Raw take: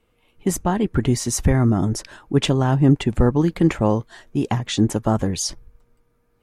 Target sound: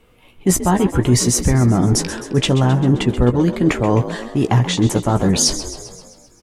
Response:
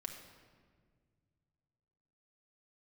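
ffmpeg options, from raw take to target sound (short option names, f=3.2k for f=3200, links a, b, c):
-filter_complex "[0:a]areverse,acompressor=threshold=-23dB:ratio=6,areverse,asplit=2[a][b];[b]adelay=16,volume=-9dB[c];[a][c]amix=inputs=2:normalize=0,asplit=8[d][e][f][g][h][i][j][k];[e]adelay=131,afreqshift=56,volume=-13dB[l];[f]adelay=262,afreqshift=112,volume=-17.4dB[m];[g]adelay=393,afreqshift=168,volume=-21.9dB[n];[h]adelay=524,afreqshift=224,volume=-26.3dB[o];[i]adelay=655,afreqshift=280,volume=-30.7dB[p];[j]adelay=786,afreqshift=336,volume=-35.2dB[q];[k]adelay=917,afreqshift=392,volume=-39.6dB[r];[d][l][m][n][o][p][q][r]amix=inputs=8:normalize=0,acontrast=79,volume=4dB"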